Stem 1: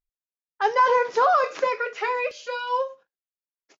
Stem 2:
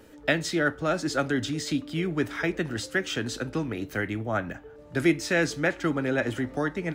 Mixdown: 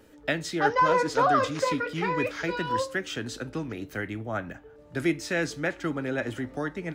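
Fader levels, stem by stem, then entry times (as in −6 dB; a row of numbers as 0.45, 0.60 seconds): −3.5, −3.5 decibels; 0.00, 0.00 seconds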